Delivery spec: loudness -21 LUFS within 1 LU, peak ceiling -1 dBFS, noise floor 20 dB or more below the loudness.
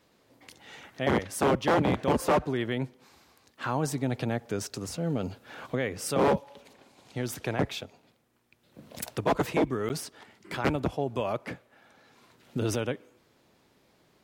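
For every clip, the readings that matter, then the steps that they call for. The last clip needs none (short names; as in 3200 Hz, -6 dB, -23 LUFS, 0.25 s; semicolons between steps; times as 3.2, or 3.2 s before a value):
dropouts 1; longest dropout 9.2 ms; loudness -30.0 LUFS; peak -16.5 dBFS; loudness target -21.0 LUFS
-> interpolate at 9.89, 9.2 ms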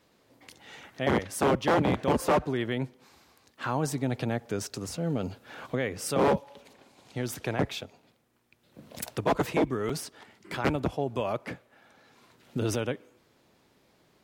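dropouts 0; loudness -30.0 LUFS; peak -16.5 dBFS; loudness target -21.0 LUFS
-> gain +9 dB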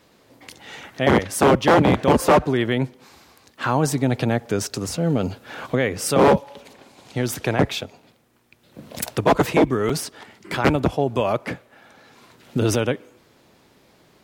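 loudness -21.0 LUFS; peak -7.5 dBFS; noise floor -57 dBFS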